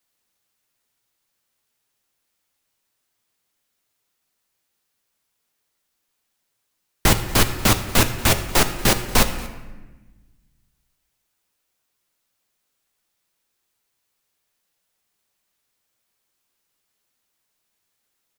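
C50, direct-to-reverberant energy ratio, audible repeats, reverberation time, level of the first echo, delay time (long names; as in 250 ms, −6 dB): 10.0 dB, 7.0 dB, 1, 1.2 s, −22.0 dB, 234 ms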